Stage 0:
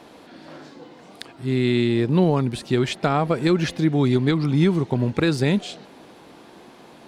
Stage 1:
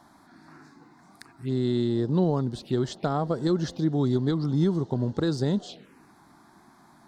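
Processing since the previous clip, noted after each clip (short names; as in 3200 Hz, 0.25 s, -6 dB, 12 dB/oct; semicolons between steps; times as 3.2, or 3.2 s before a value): envelope phaser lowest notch 430 Hz, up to 2400 Hz, full sweep at -20.5 dBFS; gain -5 dB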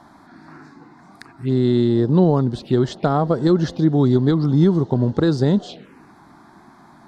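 high shelf 5500 Hz -11.5 dB; gain +8.5 dB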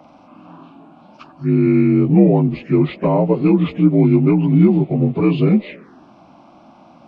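inharmonic rescaling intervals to 82%; gain +4 dB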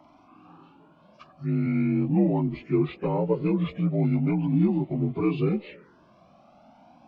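cascading flanger rising 0.4 Hz; gain -4.5 dB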